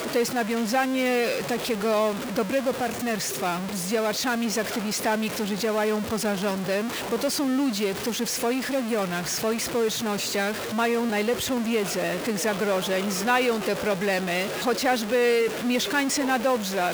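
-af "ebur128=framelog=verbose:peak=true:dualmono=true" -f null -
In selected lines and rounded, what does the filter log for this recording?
Integrated loudness:
  I:         -22.0 LUFS
  Threshold: -32.0 LUFS
Loudness range:
  LRA:         2.1 LU
  Threshold: -42.3 LUFS
  LRA low:   -23.0 LUFS
  LRA high:  -20.8 LUFS
True peak:
  Peak:       -9.1 dBFS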